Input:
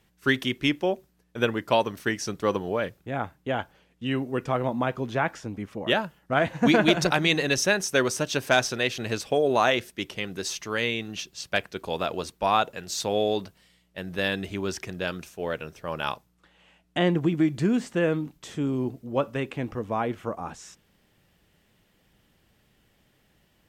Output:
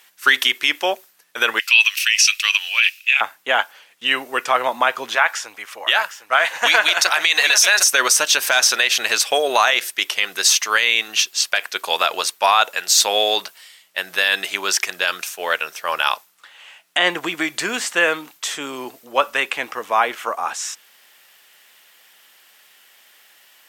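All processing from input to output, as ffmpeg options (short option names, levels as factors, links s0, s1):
-filter_complex "[0:a]asettb=1/sr,asplit=3[s0][s1][s2];[s0]atrim=end=1.594[s3];[s1]atrim=start=1.59:end=3.21,asetpts=PTS-STARTPTS,afade=t=in:d=0.004:c=qsin,afade=t=out:st=1.616:d=0.004:c=qsin,highpass=f=2600:t=q:w=11,equalizer=f=5300:t=o:w=0.78:g=5[s4];[s2]atrim=start=3.206[s5];[s3][s4]acrossfade=d=0.004:c1=hsin:c2=qsin[s6];[s6][s5]acrossfade=d=0.004:c1=qsin:c2=hsin,asettb=1/sr,asplit=3[s7][s8][s9];[s7]atrim=end=5.154[s10];[s8]atrim=start=5.15:end=7.84,asetpts=PTS-STARTPTS,afade=t=in:d=0.004:c=qsin,afade=t=out:st=2.686:d=0.004:c=qsin,equalizer=f=210:t=o:w=2:g=-12.5,aecho=1:1:757:0.282,atrim=end_sample=118629[s11];[s9]atrim=start=7.836[s12];[s10][s11]acrossfade=d=0.004:c1=hsin:c2=qsin[s13];[s13][s12]acrossfade=d=0.004:c1=qsin:c2=hsin,highpass=1100,highshelf=f=8900:g=6,alimiter=level_in=9.44:limit=0.891:release=50:level=0:latency=1,volume=0.75"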